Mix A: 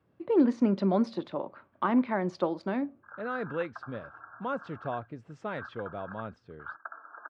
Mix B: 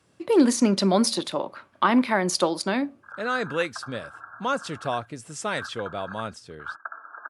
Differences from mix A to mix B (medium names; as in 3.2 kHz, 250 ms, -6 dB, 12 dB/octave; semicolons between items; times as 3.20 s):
speech +3.5 dB; master: remove tape spacing loss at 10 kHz 43 dB